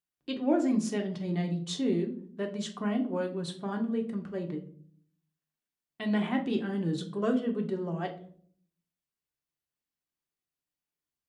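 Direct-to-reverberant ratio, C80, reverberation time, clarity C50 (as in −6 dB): 2.5 dB, 16.5 dB, 0.55 s, 12.0 dB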